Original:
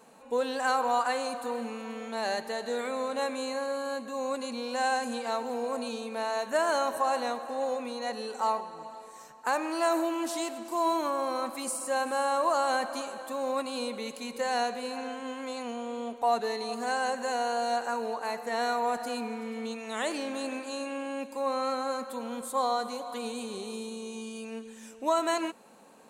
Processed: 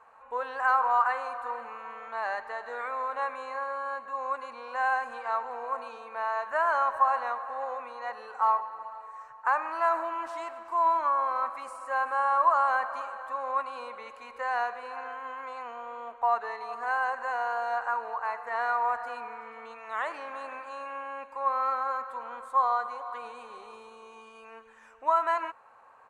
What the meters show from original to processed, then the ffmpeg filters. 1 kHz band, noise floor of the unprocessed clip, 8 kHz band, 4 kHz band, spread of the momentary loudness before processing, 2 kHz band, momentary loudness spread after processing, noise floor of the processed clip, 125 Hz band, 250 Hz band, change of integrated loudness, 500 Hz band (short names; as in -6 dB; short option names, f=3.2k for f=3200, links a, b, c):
+3.5 dB, -48 dBFS, under -15 dB, under -10 dB, 10 LU, +2.5 dB, 16 LU, -52 dBFS, n/a, -19.0 dB, +1.5 dB, -5.5 dB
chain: -af "firequalizer=gain_entry='entry(120,0);entry(170,-25);entry(490,-8);entry(1100,8);entry(3500,-15);entry(13000,-26)':delay=0.05:min_phase=1"